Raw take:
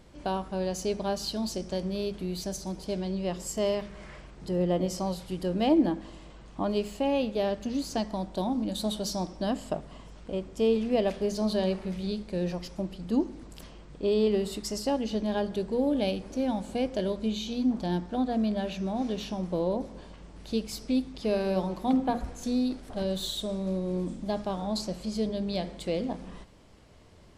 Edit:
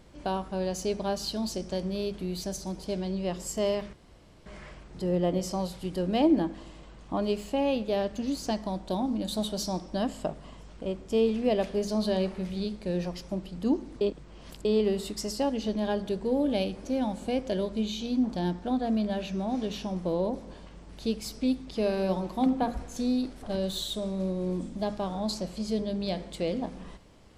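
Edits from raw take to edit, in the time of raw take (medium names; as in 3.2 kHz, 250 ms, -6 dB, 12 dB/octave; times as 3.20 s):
3.93 s: insert room tone 0.53 s
13.48–14.12 s: reverse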